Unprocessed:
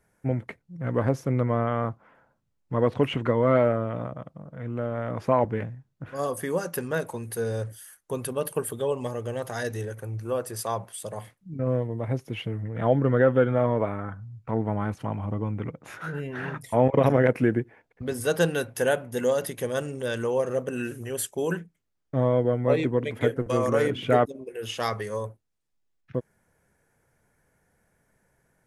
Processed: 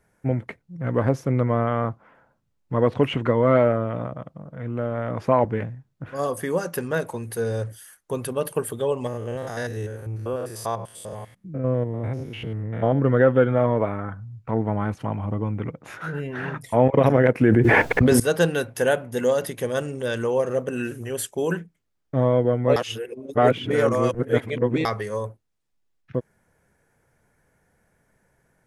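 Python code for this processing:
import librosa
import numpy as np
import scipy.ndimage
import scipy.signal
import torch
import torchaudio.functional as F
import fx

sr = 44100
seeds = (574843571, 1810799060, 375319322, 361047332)

y = fx.spec_steps(x, sr, hold_ms=100, at=(9.07, 12.98), fade=0.02)
y = fx.env_flatten(y, sr, amount_pct=100, at=(17.41, 18.2))
y = fx.edit(y, sr, fx.reverse_span(start_s=22.76, length_s=2.09), tone=tone)
y = fx.high_shelf(y, sr, hz=8100.0, db=-4.5)
y = F.gain(torch.from_numpy(y), 3.0).numpy()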